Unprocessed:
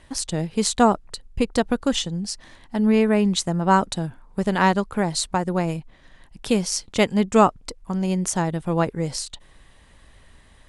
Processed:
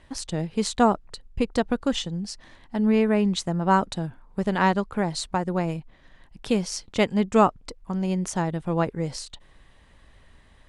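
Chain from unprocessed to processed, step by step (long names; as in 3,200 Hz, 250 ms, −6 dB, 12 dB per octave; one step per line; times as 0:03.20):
high-shelf EQ 7,600 Hz −11 dB
level −2.5 dB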